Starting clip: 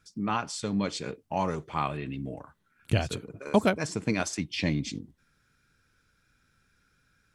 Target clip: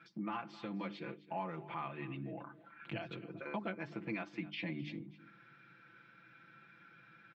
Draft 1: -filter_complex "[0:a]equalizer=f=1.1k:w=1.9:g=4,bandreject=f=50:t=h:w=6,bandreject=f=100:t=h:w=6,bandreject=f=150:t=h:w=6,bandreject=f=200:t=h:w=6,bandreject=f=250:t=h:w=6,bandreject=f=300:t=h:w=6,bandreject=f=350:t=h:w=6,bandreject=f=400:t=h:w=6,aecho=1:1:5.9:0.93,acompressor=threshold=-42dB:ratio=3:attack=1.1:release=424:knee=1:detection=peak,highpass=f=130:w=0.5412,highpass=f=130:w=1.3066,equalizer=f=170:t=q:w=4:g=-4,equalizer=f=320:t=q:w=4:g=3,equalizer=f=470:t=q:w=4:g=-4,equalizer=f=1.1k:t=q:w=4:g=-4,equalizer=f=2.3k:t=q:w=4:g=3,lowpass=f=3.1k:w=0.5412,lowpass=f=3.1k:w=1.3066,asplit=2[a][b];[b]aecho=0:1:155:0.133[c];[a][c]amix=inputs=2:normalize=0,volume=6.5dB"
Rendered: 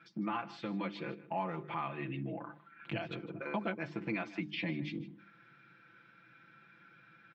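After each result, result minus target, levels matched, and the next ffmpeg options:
echo 0.106 s early; compressor: peak gain reduction -4 dB
-filter_complex "[0:a]equalizer=f=1.1k:w=1.9:g=4,bandreject=f=50:t=h:w=6,bandreject=f=100:t=h:w=6,bandreject=f=150:t=h:w=6,bandreject=f=200:t=h:w=6,bandreject=f=250:t=h:w=6,bandreject=f=300:t=h:w=6,bandreject=f=350:t=h:w=6,bandreject=f=400:t=h:w=6,aecho=1:1:5.9:0.93,acompressor=threshold=-42dB:ratio=3:attack=1.1:release=424:knee=1:detection=peak,highpass=f=130:w=0.5412,highpass=f=130:w=1.3066,equalizer=f=170:t=q:w=4:g=-4,equalizer=f=320:t=q:w=4:g=3,equalizer=f=470:t=q:w=4:g=-4,equalizer=f=1.1k:t=q:w=4:g=-4,equalizer=f=2.3k:t=q:w=4:g=3,lowpass=f=3.1k:w=0.5412,lowpass=f=3.1k:w=1.3066,asplit=2[a][b];[b]aecho=0:1:261:0.133[c];[a][c]amix=inputs=2:normalize=0,volume=6.5dB"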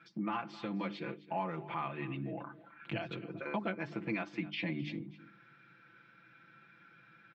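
compressor: peak gain reduction -4 dB
-filter_complex "[0:a]equalizer=f=1.1k:w=1.9:g=4,bandreject=f=50:t=h:w=6,bandreject=f=100:t=h:w=6,bandreject=f=150:t=h:w=6,bandreject=f=200:t=h:w=6,bandreject=f=250:t=h:w=6,bandreject=f=300:t=h:w=6,bandreject=f=350:t=h:w=6,bandreject=f=400:t=h:w=6,aecho=1:1:5.9:0.93,acompressor=threshold=-48dB:ratio=3:attack=1.1:release=424:knee=1:detection=peak,highpass=f=130:w=0.5412,highpass=f=130:w=1.3066,equalizer=f=170:t=q:w=4:g=-4,equalizer=f=320:t=q:w=4:g=3,equalizer=f=470:t=q:w=4:g=-4,equalizer=f=1.1k:t=q:w=4:g=-4,equalizer=f=2.3k:t=q:w=4:g=3,lowpass=f=3.1k:w=0.5412,lowpass=f=3.1k:w=1.3066,asplit=2[a][b];[b]aecho=0:1:261:0.133[c];[a][c]amix=inputs=2:normalize=0,volume=6.5dB"

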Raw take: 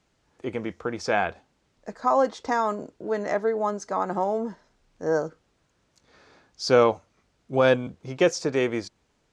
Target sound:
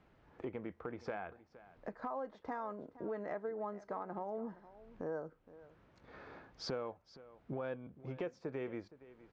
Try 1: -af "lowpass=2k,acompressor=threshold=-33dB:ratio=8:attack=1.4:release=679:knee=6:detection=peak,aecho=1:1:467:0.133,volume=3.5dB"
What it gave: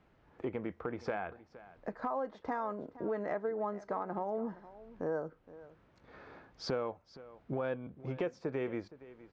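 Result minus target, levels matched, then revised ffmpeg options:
compressor: peak gain reduction -5 dB
-af "lowpass=2k,acompressor=threshold=-39dB:ratio=8:attack=1.4:release=679:knee=6:detection=peak,aecho=1:1:467:0.133,volume=3.5dB"

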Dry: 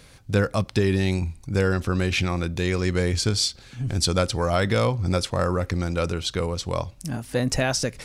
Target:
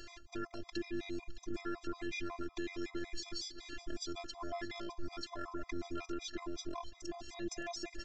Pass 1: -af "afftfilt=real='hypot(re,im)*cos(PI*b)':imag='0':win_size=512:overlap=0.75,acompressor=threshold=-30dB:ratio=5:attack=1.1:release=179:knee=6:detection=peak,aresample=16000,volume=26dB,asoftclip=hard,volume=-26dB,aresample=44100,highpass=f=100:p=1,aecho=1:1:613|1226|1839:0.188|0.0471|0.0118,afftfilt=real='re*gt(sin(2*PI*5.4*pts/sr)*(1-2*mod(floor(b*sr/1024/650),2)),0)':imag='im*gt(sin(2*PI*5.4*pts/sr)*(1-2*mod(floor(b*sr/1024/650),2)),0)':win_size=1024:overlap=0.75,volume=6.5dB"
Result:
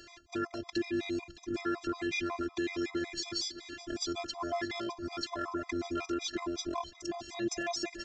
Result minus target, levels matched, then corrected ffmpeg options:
compressor: peak gain reduction -8 dB; 125 Hz band -3.5 dB
-af "afftfilt=real='hypot(re,im)*cos(PI*b)':imag='0':win_size=512:overlap=0.75,acompressor=threshold=-40dB:ratio=5:attack=1.1:release=179:knee=6:detection=peak,aresample=16000,volume=26dB,asoftclip=hard,volume=-26dB,aresample=44100,aecho=1:1:613|1226|1839:0.188|0.0471|0.0118,afftfilt=real='re*gt(sin(2*PI*5.4*pts/sr)*(1-2*mod(floor(b*sr/1024/650),2)),0)':imag='im*gt(sin(2*PI*5.4*pts/sr)*(1-2*mod(floor(b*sr/1024/650),2)),0)':win_size=1024:overlap=0.75,volume=6.5dB"

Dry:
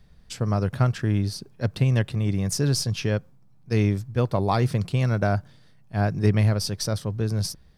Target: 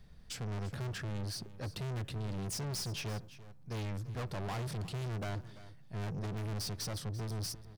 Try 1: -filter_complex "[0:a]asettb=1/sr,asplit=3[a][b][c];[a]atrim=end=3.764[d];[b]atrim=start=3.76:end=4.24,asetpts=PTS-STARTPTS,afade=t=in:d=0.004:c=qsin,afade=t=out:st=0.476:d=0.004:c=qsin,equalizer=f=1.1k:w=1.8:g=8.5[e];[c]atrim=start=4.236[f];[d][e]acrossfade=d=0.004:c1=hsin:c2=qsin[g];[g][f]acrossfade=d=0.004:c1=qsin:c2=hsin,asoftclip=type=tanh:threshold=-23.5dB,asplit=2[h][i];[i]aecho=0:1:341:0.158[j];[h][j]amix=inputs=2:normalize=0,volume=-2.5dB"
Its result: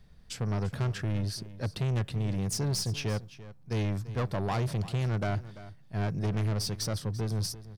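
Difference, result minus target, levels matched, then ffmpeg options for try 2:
soft clip: distortion -5 dB
-filter_complex "[0:a]asettb=1/sr,asplit=3[a][b][c];[a]atrim=end=3.764[d];[b]atrim=start=3.76:end=4.24,asetpts=PTS-STARTPTS,afade=t=in:d=0.004:c=qsin,afade=t=out:st=0.476:d=0.004:c=qsin,equalizer=f=1.1k:w=1.8:g=8.5[e];[c]atrim=start=4.236[f];[d][e]acrossfade=d=0.004:c1=hsin:c2=qsin[g];[g][f]acrossfade=d=0.004:c1=qsin:c2=hsin,asoftclip=type=tanh:threshold=-34dB,asplit=2[h][i];[i]aecho=0:1:341:0.158[j];[h][j]amix=inputs=2:normalize=0,volume=-2.5dB"

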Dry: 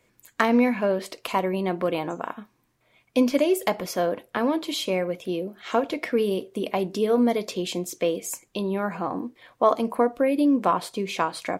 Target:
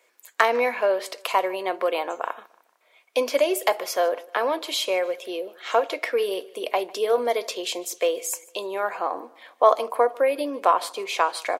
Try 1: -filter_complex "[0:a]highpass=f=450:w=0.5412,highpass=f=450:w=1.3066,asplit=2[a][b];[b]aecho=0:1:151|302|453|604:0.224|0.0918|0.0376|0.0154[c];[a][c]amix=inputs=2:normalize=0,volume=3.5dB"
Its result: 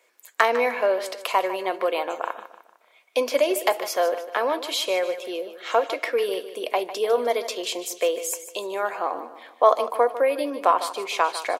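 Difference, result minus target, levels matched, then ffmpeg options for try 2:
echo-to-direct +10 dB
-filter_complex "[0:a]highpass=f=450:w=0.5412,highpass=f=450:w=1.3066,asplit=2[a][b];[b]aecho=0:1:151|302|453:0.0708|0.029|0.0119[c];[a][c]amix=inputs=2:normalize=0,volume=3.5dB"

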